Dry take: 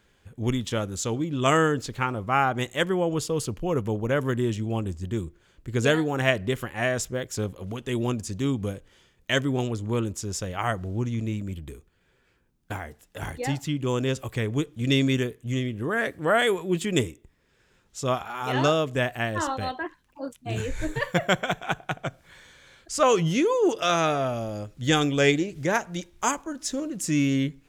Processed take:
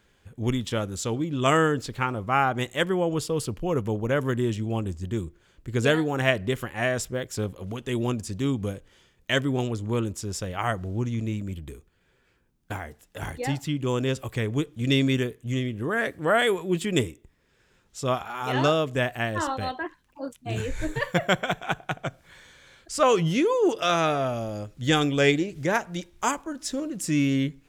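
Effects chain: dynamic bell 6.5 kHz, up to -6 dB, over -51 dBFS, Q 6.2

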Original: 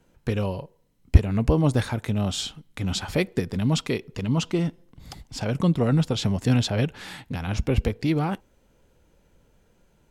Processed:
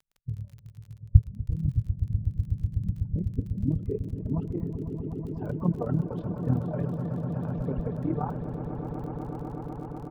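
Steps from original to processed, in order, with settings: expander on every frequency bin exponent 1.5; reverb removal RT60 1.5 s; low-pass that closes with the level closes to 1.3 kHz, closed at -19.5 dBFS; bass shelf 130 Hz +5.5 dB; comb 6.8 ms, depth 47%; low-pass sweep 110 Hz -> 1 kHz, 2.55–4.65 s; AM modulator 38 Hz, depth 60%; on a send: echo with a slow build-up 124 ms, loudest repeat 8, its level -12 dB; on the sum: crackle 29 per s -38 dBFS; trim -5 dB

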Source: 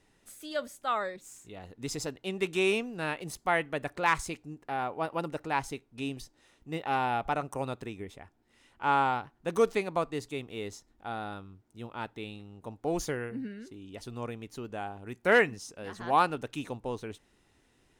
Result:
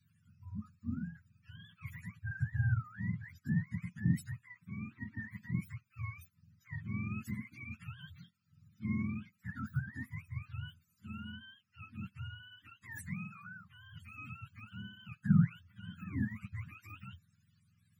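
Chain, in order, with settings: spectrum inverted on a logarithmic axis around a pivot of 550 Hz; Chebyshev band-stop 210–1500 Hz, order 3; time-frequency box 7.53–7.74 s, 840–2100 Hz -10 dB; trim -2.5 dB

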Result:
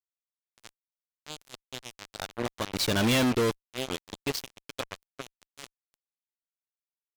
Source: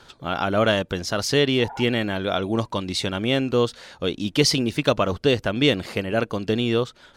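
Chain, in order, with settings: Doppler pass-by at 3.12 s, 18 m/s, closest 1.2 m; delay 666 ms -23 dB; fuzz box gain 46 dB, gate -41 dBFS; trim -8.5 dB

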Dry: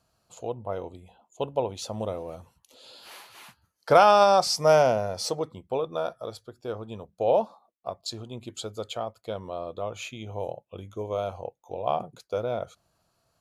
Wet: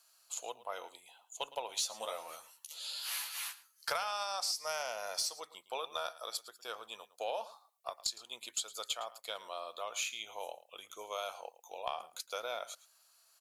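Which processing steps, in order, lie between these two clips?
high-pass 1.3 kHz 12 dB/octave; treble shelf 5.4 kHz +11 dB; compression 10:1, threshold -36 dBFS, peak gain reduction 18.5 dB; Chebyshev shaper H 2 -19 dB, 6 -31 dB, 8 -32 dB, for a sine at -20.5 dBFS; 1.70–3.90 s: doubling 13 ms -4 dB; delay 111 ms -17.5 dB; trim +3 dB

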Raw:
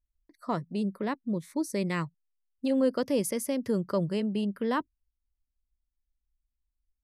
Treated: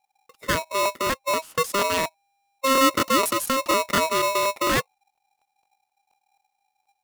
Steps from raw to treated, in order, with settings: crackling interface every 0.24 s, samples 1024, repeat, from 0.81 s; polarity switched at an audio rate 800 Hz; trim +6.5 dB

